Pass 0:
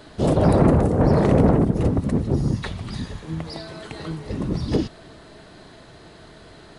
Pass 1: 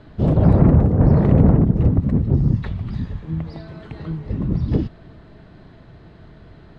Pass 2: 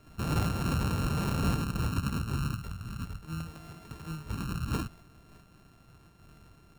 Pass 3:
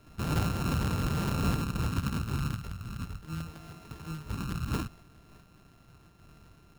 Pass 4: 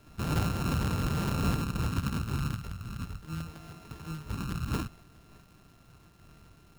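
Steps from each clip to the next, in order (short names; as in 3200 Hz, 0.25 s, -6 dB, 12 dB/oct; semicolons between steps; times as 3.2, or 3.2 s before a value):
LPF 6600 Hz 12 dB/oct; tone controls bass +11 dB, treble -13 dB; gain -4.5 dB
sample sorter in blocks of 32 samples; limiter -10.5 dBFS, peak gain reduction 9 dB; noise-modulated level, depth 55%; gain -8.5 dB
sample-rate reducer 8100 Hz, jitter 0%
crackle 350/s -54 dBFS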